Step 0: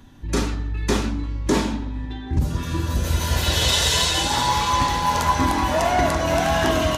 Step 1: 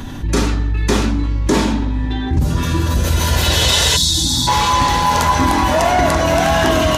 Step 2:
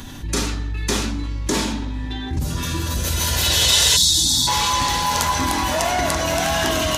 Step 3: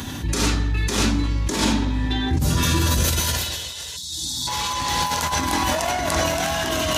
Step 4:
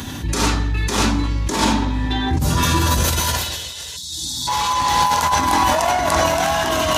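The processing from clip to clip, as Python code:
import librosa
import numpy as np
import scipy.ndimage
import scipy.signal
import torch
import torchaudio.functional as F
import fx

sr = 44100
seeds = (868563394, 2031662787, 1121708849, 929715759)

y1 = fx.spec_box(x, sr, start_s=3.97, length_s=0.5, low_hz=340.0, high_hz=3300.0, gain_db=-21)
y1 = fx.env_flatten(y1, sr, amount_pct=50)
y1 = F.gain(torch.from_numpy(y1), 3.5).numpy()
y2 = fx.high_shelf(y1, sr, hz=2500.0, db=10.5)
y2 = F.gain(torch.from_numpy(y2), -8.0).numpy()
y3 = scipy.signal.sosfilt(scipy.signal.butter(4, 52.0, 'highpass', fs=sr, output='sos'), y2)
y3 = fx.over_compress(y3, sr, threshold_db=-23.0, ratio=-0.5)
y3 = F.gain(torch.from_numpy(y3), 2.0).numpy()
y4 = fx.dynamic_eq(y3, sr, hz=940.0, q=1.3, threshold_db=-38.0, ratio=4.0, max_db=7)
y4 = F.gain(torch.from_numpy(y4), 1.5).numpy()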